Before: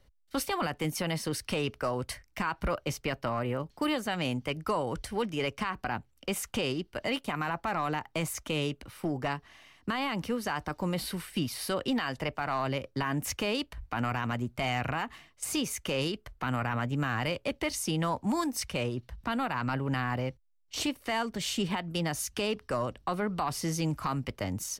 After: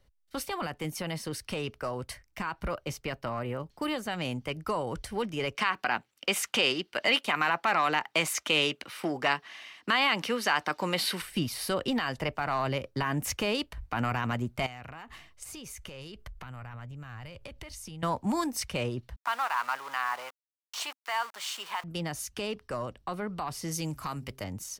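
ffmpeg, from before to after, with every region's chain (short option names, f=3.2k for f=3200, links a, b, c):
-filter_complex "[0:a]asettb=1/sr,asplit=3[a][b][c];[a]atrim=end=5.554[d];[b]atrim=start=5.55:end=11.22,asetpts=PTS-STARTPTS,afade=t=in:d=0.004:c=qsin,afade=t=out:st=5.666:d=0.004:c=qsin,highpass=230,equalizer=f=2.8k:t=o:w=2.8:g=9[e];[c]atrim=start=11.216[f];[d][e]acrossfade=d=0.004:c1=hsin:c2=qsin[g];[g][f]acrossfade=d=0.004:c1=qsin:c2=hsin,asettb=1/sr,asplit=3[h][i][j];[h]atrim=end=14.664[k];[i]atrim=start=14.66:end=18.03,asetpts=PTS-STARTPTS,afade=t=in:d=0.004:c=qsin,afade=t=out:st=3.366:d=0.004:c=qsin,asubboost=boost=7.5:cutoff=110,acompressor=threshold=-41dB:ratio=10:attack=3.2:release=140:knee=1:detection=peak[l];[j]atrim=start=18.026[m];[k][l]acrossfade=d=0.004:c1=hsin:c2=qsin[n];[n][m]acrossfade=d=0.004:c1=qsin:c2=hsin,asettb=1/sr,asplit=3[o][p][q];[o]atrim=end=19.164[r];[p]atrim=start=19.16:end=21.84,asetpts=PTS-STARTPTS,afade=t=in:d=0.004:c=qsin,afade=t=out:st=2.676:d=0.004:c=qsin,aeval=exprs='val(0)*gte(abs(val(0)),0.0112)':c=same,highpass=f=1k:t=q:w=2[s];[q]atrim=start=21.836[t];[r][s]acrossfade=d=0.004:c1=hsin:c2=qsin[u];[u][t]acrossfade=d=0.004:c1=qsin:c2=hsin,asettb=1/sr,asplit=3[v][w][x];[v]atrim=end=23.714[y];[w]atrim=start=23.71:end=24.44,asetpts=PTS-STARTPTS,afade=t=in:d=0.004:c=qsin,afade=t=out:st=0.726:d=0.004:c=qsin,aemphasis=mode=production:type=cd,bandreject=f=132.1:t=h:w=4,bandreject=f=264.2:t=h:w=4,bandreject=f=396.3:t=h:w=4[z];[x]atrim=start=24.436[aa];[y][z]acrossfade=d=0.004:c1=hsin:c2=qsin[ab];[ab][aa]acrossfade=d=0.004:c1=qsin:c2=hsin,equalizer=f=270:w=6.7:g=-3,dynaudnorm=f=340:g=31:m=4.5dB,volume=-3dB"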